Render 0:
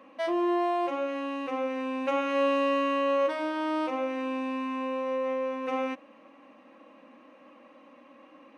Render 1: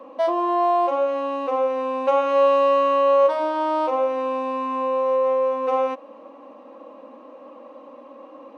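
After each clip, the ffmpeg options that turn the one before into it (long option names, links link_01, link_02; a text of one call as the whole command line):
ffmpeg -i in.wav -filter_complex "[0:a]equalizer=frequency=125:width_type=o:width=1:gain=-9,equalizer=frequency=250:width_type=o:width=1:gain=6,equalizer=frequency=500:width_type=o:width=1:gain=12,equalizer=frequency=1000:width_type=o:width=1:gain=10,equalizer=frequency=2000:width_type=o:width=1:gain=-6,equalizer=frequency=4000:width_type=o:width=1:gain=4,acrossover=split=540|1000[link_01][link_02][link_03];[link_01]acompressor=threshold=-32dB:ratio=6[link_04];[link_04][link_02][link_03]amix=inputs=3:normalize=0" out.wav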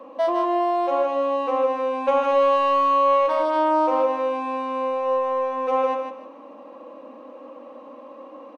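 ffmpeg -i in.wav -af "asoftclip=type=tanh:threshold=-9.5dB,aecho=1:1:154|308|462:0.531|0.138|0.0359" out.wav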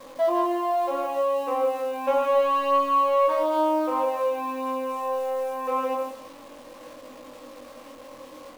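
ffmpeg -i in.wav -af "acrusher=bits=8:dc=4:mix=0:aa=0.000001,flanger=delay=19.5:depth=4.9:speed=0.28" out.wav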